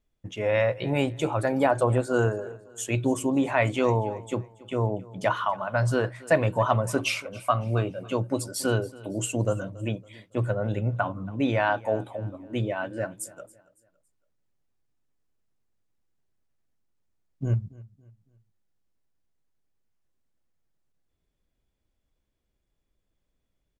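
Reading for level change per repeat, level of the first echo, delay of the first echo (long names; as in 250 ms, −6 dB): −8.5 dB, −21.0 dB, 279 ms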